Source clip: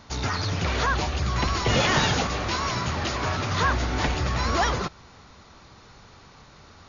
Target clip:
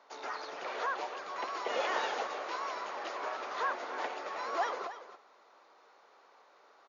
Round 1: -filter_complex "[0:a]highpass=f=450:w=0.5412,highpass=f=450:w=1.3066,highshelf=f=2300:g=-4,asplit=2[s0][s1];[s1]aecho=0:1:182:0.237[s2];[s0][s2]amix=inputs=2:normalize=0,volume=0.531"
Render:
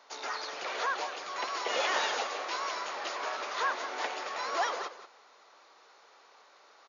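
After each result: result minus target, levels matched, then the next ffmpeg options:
echo 100 ms early; 4 kHz band +4.5 dB
-filter_complex "[0:a]highpass=f=450:w=0.5412,highpass=f=450:w=1.3066,highshelf=f=2300:g=-4,asplit=2[s0][s1];[s1]aecho=0:1:282:0.237[s2];[s0][s2]amix=inputs=2:normalize=0,volume=0.531"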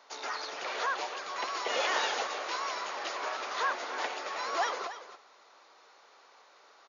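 4 kHz band +5.0 dB
-filter_complex "[0:a]highpass=f=450:w=0.5412,highpass=f=450:w=1.3066,highshelf=f=2300:g=-15.5,asplit=2[s0][s1];[s1]aecho=0:1:282:0.237[s2];[s0][s2]amix=inputs=2:normalize=0,volume=0.531"

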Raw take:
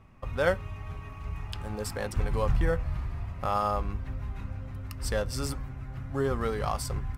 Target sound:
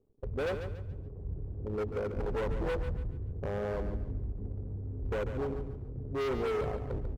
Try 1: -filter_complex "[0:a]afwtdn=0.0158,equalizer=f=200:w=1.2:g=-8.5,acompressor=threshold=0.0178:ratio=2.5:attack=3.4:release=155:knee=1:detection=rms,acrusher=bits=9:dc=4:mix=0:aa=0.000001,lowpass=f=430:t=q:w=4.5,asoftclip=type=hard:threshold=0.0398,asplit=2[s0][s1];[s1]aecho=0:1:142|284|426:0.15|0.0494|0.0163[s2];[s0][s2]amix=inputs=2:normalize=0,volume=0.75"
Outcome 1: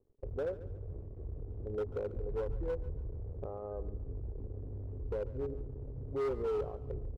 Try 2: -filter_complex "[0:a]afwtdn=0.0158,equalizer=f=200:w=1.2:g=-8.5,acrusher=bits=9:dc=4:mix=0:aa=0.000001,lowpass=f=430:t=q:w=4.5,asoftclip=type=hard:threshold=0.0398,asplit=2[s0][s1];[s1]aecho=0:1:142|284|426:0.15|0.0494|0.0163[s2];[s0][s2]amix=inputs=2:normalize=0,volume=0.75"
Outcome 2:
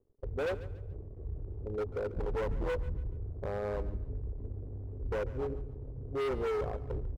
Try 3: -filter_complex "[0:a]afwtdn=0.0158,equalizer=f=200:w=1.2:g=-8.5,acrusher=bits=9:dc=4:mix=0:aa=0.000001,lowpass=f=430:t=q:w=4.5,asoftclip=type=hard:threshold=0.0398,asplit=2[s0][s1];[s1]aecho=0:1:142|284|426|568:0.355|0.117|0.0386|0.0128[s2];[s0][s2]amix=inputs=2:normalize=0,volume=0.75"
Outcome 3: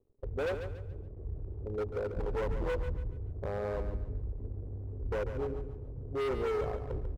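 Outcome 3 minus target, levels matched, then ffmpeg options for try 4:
250 Hz band -3.0 dB
-filter_complex "[0:a]afwtdn=0.0158,acrusher=bits=9:dc=4:mix=0:aa=0.000001,lowpass=f=430:t=q:w=4.5,asoftclip=type=hard:threshold=0.0398,asplit=2[s0][s1];[s1]aecho=0:1:142|284|426|568:0.355|0.117|0.0386|0.0128[s2];[s0][s2]amix=inputs=2:normalize=0,volume=0.75"

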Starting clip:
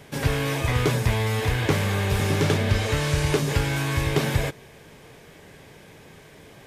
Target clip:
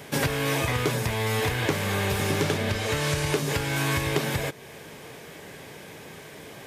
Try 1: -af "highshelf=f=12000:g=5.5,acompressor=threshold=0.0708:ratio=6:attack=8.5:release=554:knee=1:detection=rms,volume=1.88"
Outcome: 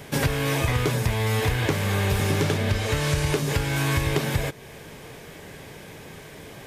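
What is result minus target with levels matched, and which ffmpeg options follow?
125 Hz band +3.0 dB
-af "highshelf=f=12000:g=5.5,acompressor=threshold=0.0708:ratio=6:attack=8.5:release=554:knee=1:detection=rms,highpass=f=160:p=1,volume=1.88"

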